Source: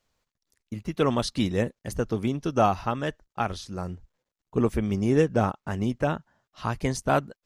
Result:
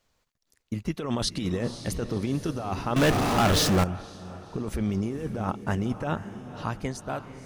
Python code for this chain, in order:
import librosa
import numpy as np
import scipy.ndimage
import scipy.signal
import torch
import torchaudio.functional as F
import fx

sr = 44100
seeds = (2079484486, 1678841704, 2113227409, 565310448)

y = fx.fade_out_tail(x, sr, length_s=1.53)
y = fx.over_compress(y, sr, threshold_db=-28.0, ratio=-1.0)
y = fx.echo_diffused(y, sr, ms=515, feedback_pct=47, wet_db=-11.5)
y = fx.power_curve(y, sr, exponent=0.35, at=(2.96, 3.84))